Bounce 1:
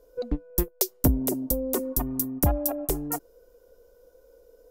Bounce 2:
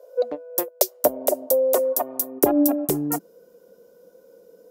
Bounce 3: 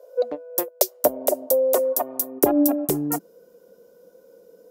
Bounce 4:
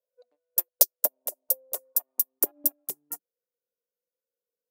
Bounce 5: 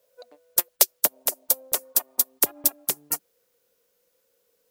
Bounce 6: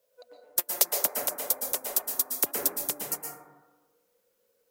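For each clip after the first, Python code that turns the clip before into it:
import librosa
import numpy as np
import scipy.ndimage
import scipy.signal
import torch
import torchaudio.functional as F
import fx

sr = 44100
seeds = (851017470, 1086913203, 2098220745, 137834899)

y1 = fx.filter_sweep_highpass(x, sr, from_hz=590.0, to_hz=190.0, start_s=2.24, end_s=2.82, q=5.4)
y1 = F.gain(torch.from_numpy(y1), 3.5).numpy()
y2 = y1
y3 = fx.tilt_eq(y2, sr, slope=3.5)
y3 = fx.upward_expand(y3, sr, threshold_db=-27.0, expansion=2.5)
y3 = F.gain(torch.from_numpy(y3), -8.0).numpy()
y4 = fx.spectral_comp(y3, sr, ratio=2.0)
y5 = fx.rev_plate(y4, sr, seeds[0], rt60_s=1.2, hf_ratio=0.25, predelay_ms=105, drr_db=-1.0)
y5 = F.gain(torch.from_numpy(y5), -5.5).numpy()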